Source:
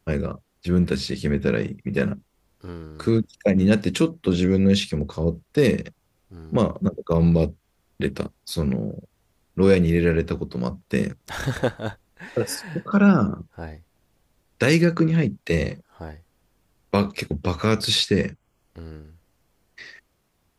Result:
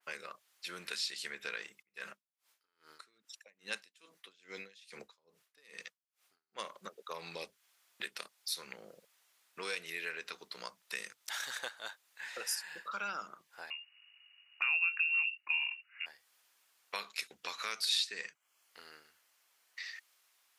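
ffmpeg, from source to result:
-filter_complex "[0:a]asplit=3[s0][s1][s2];[s0]afade=t=out:st=1.81:d=0.02[s3];[s1]aeval=exprs='val(0)*pow(10,-38*(0.5-0.5*cos(2*PI*2.4*n/s))/20)':c=same,afade=t=in:st=1.81:d=0.02,afade=t=out:st=6.58:d=0.02[s4];[s2]afade=t=in:st=6.58:d=0.02[s5];[s3][s4][s5]amix=inputs=3:normalize=0,asettb=1/sr,asplit=3[s6][s7][s8];[s6]atrim=end=13.704[s9];[s7]atrim=start=13.7:end=16.06,asetpts=PTS-STARTPTS,afade=t=in:d=0.004:c=qsin,afade=t=out:st=2.356:d=0.004:c=qsin,lowpass=f=2500:t=q:w=0.5098,lowpass=f=2500:t=q:w=0.6013,lowpass=f=2500:t=q:w=0.9,lowpass=f=2500:t=q:w=2.563,afreqshift=-2900[s10];[s8]atrim=start=16.056[s11];[s9][s10]acrossfade=d=0.004:c1=hsin:c2=qsin[s12];[s12][s11]acrossfade=d=0.004:c1=qsin:c2=hsin,highpass=1400,acompressor=threshold=0.00398:ratio=2,adynamicequalizer=threshold=0.00282:dfrequency=2700:dqfactor=0.7:tfrequency=2700:tqfactor=0.7:attack=5:release=100:ratio=0.375:range=2:mode=boostabove:tftype=highshelf,volume=1.26"

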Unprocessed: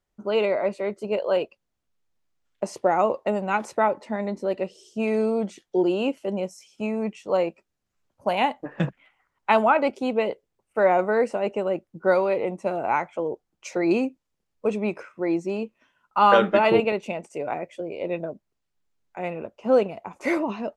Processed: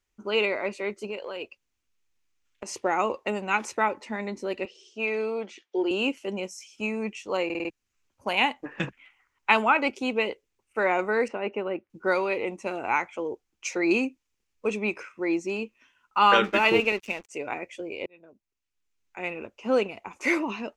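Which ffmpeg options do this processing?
-filter_complex "[0:a]asettb=1/sr,asplit=3[s0][s1][s2];[s0]atrim=end=1.084[s3];[s1]atrim=start=1.08:end=2.74,asetpts=PTS-STARTPTS,afade=t=in:d=0.004:c=qsin,afade=t=out:st=1.656:d=0.004:c=qsin,acompressor=threshold=0.0447:ratio=6:attack=3.2:release=140:knee=1:detection=peak[s4];[s2]atrim=start=2.736[s5];[s3][s4]acrossfade=d=0.004:c1=hsin:c2=qsin[s6];[s6][s5]acrossfade=d=0.004:c1=qsin:c2=hsin,asettb=1/sr,asplit=3[s7][s8][s9];[s7]atrim=end=4.654[s10];[s8]atrim=start=4.65:end=5.91,asetpts=PTS-STARTPTS,afade=t=in:d=0.004:c=qsin,afade=t=out:st=1.256:d=0.004:c=qsin,highpass=350,lowpass=3900[s11];[s9]atrim=start=5.906[s12];[s10][s11]acrossfade=d=0.004:c1=hsin:c2=qsin[s13];[s13][s12]acrossfade=d=0.004:c1=qsin:c2=hsin,asettb=1/sr,asplit=3[s14][s15][s16];[s14]atrim=end=11.284[s17];[s15]atrim=start=11.28:end=11.9,asetpts=PTS-STARTPTS,afade=t=in:d=0.004:c=qsin,afade=t=out:st=0.616:d=0.004:c=qsin,highpass=100,lowpass=2300[s18];[s16]atrim=start=11.896[s19];[s17][s18]acrossfade=d=0.004:c1=hsin:c2=qsin[s20];[s20][s19]acrossfade=d=0.004:c1=qsin:c2=hsin,asettb=1/sr,asplit=3[s21][s22][s23];[s21]atrim=end=16.444[s24];[s22]atrim=start=16.44:end=17.29,asetpts=PTS-STARTPTS,afade=t=in:d=0.004:c=qsin,afade=t=out:st=0.846:d=0.004:c=qsin,aeval=exprs='sgn(val(0))*max(abs(val(0))-0.00631,0)':c=same[s25];[s23]atrim=start=17.286[s26];[s24][s25]acrossfade=d=0.004:c1=hsin:c2=qsin[s27];[s27][s26]acrossfade=d=0.004:c1=qsin:c2=hsin,asplit=7[s28][s29][s30][s31][s32][s33][s34];[s28]atrim=end=7.502[s35];[s29]atrim=start=7.448:end=7.502[s36];[s30]atrim=start=7.448:end=7.502[s37];[s31]atrim=start=7.448:end=7.502[s38];[s32]atrim=start=7.448:end=7.502[s39];[s33]atrim=start=7.698:end=18.06,asetpts=PTS-STARTPTS,afade=t=out:st=10.358:d=0.004:c=hsin[s40];[s34]atrim=start=18.06,asetpts=PTS-STARTPTS,afade=t=in:d=1.24[s41];[s35][s36]acrossfade=d=0.004:c1=hsin:c2=hsin[s42];[s42][s37]acrossfade=d=0.004:c1=hsin:c2=hsin[s43];[s43][s38]acrossfade=d=0.004:c1=hsin:c2=hsin[s44];[s44][s39]acrossfade=d=0.004:c1=hsin:c2=hsin[s45];[s40][s41]concat=n=2:v=0:a=1[s46];[s45][s46]acrossfade=d=0.004:c1=hsin:c2=hsin,equalizer=f=160:t=o:w=0.67:g=-10,equalizer=f=630:t=o:w=0.67:g=-9,equalizer=f=2500:t=o:w=0.67:g=7,equalizer=f=6300:t=o:w=0.67:g=6"

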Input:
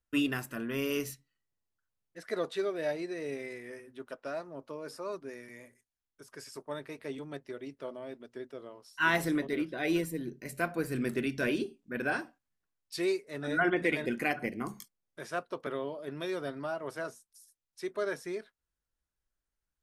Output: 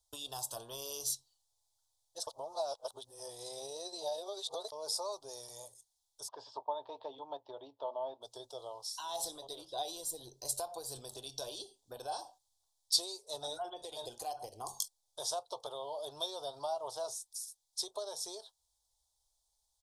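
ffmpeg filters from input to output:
-filter_complex "[0:a]asplit=3[s0][s1][s2];[s0]afade=t=out:st=6.27:d=0.02[s3];[s1]highpass=120,equalizer=f=150:t=q:w=4:g=-7,equalizer=f=280:t=q:w=4:g=8,equalizer=f=610:t=q:w=4:g=3,equalizer=f=950:t=q:w=4:g=7,equalizer=f=1700:t=q:w=4:g=5,lowpass=f=2900:w=0.5412,lowpass=f=2900:w=1.3066,afade=t=in:st=6.27:d=0.02,afade=t=out:st=8.21:d=0.02[s4];[s2]afade=t=in:st=8.21:d=0.02[s5];[s3][s4][s5]amix=inputs=3:normalize=0,asettb=1/sr,asplit=3[s6][s7][s8];[s6]atrim=end=16.264[s9];[s7]atrim=start=16.26:end=17.08,asetpts=PTS-STARTPTS,afade=t=in:d=0.004:c=qsin,afade=t=out:st=0.816:d=0.004:c=qsin,acrossover=split=4600[s10][s11];[s11]acompressor=threshold=0.001:ratio=4:attack=1:release=60[s12];[s10][s12]amix=inputs=2:normalize=0[s13];[s8]atrim=start=17.076[s14];[s9][s13]acrossfade=d=0.004:c1=hsin:c2=qsin[s15];[s15][s14]acrossfade=d=0.004:c1=qsin:c2=hsin,asplit=3[s16][s17][s18];[s16]atrim=end=2.272[s19];[s17]atrim=start=2.268:end=4.722,asetpts=PTS-STARTPTS,areverse[s20];[s18]atrim=start=4.718[s21];[s19][s20]acrossfade=d=0.004:c1=hsin:c2=hsin[s22];[s22][s21]acrossfade=d=0.004:c1=hsin:c2=hsin,alimiter=level_in=1.12:limit=0.0631:level=0:latency=1:release=305,volume=0.891,acompressor=threshold=0.0112:ratio=6,firequalizer=gain_entry='entry(110,0);entry(180,-27);entry(460,-2);entry(840,13);entry(1400,-14);entry(2100,-29);entry(3400,13);entry(5000,15);entry(9400,15);entry(14000,5)':delay=0.05:min_phase=1,volume=1.12"

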